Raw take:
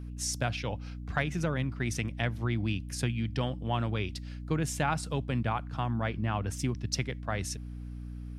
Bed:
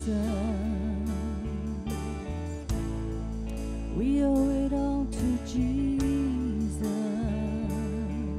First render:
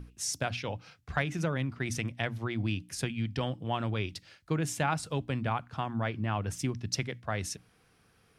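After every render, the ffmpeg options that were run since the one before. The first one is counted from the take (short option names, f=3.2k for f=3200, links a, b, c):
-af "bandreject=f=60:t=h:w=6,bandreject=f=120:t=h:w=6,bandreject=f=180:t=h:w=6,bandreject=f=240:t=h:w=6,bandreject=f=300:t=h:w=6"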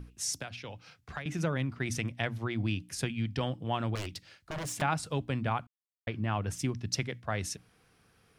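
-filter_complex "[0:a]asettb=1/sr,asplit=3[a][b][c];[a]atrim=end=0.394[d];[b]atrim=start=0.39:end=1.26,asetpts=PTS-STARTPTS,afade=t=in:d=0.004:c=qsin,afade=t=out:st=0.866:d=0.004:c=qsin,acrossover=split=180|1500[e][f][g];[e]acompressor=threshold=-48dB:ratio=4[h];[f]acompressor=threshold=-44dB:ratio=4[i];[g]acompressor=threshold=-43dB:ratio=4[j];[h][i][j]amix=inputs=3:normalize=0[k];[c]atrim=start=1.256[l];[d][k]acrossfade=d=0.004:c1=hsin:c2=qsin[m];[m][l]acrossfade=d=0.004:c1=qsin:c2=hsin,asettb=1/sr,asplit=3[n][o][p];[n]atrim=end=3.954[q];[o]atrim=start=3.95:end=4.82,asetpts=PTS-STARTPTS,afade=t=in:d=0.004:c=qsin,afade=t=out:st=0.866:d=0.004:c=qsin,aeval=exprs='0.0266*(abs(mod(val(0)/0.0266+3,4)-2)-1)':c=same[r];[p]atrim=start=4.816[s];[q][r]acrossfade=d=0.004:c1=hsin:c2=qsin[t];[t][s]acrossfade=d=0.004:c1=qsin:c2=hsin,asplit=3[u][v][w];[u]atrim=end=5.67,asetpts=PTS-STARTPTS,afade=t=out:st=5.666:d=0.004:c=hsin[x];[v]atrim=start=5.67:end=6.07,asetpts=PTS-STARTPTS,volume=0[y];[w]atrim=start=6.07,asetpts=PTS-STARTPTS,afade=t=in:d=0.004:c=hsin[z];[x][y][z]concat=n=3:v=0:a=1"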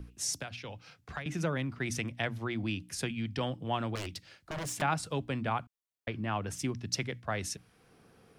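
-filter_complex "[0:a]acrossover=split=160|840[a][b][c];[a]alimiter=level_in=14.5dB:limit=-24dB:level=0:latency=1,volume=-14.5dB[d];[b]acompressor=mode=upward:threshold=-52dB:ratio=2.5[e];[d][e][c]amix=inputs=3:normalize=0"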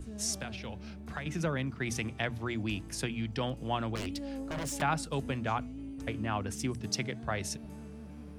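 -filter_complex "[1:a]volume=-15dB[a];[0:a][a]amix=inputs=2:normalize=0"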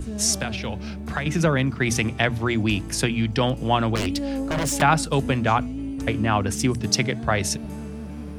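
-af "volume=12dB"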